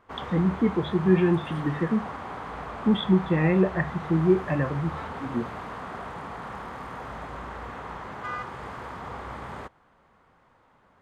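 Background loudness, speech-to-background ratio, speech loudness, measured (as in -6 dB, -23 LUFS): -37.0 LUFS, 12.0 dB, -25.0 LUFS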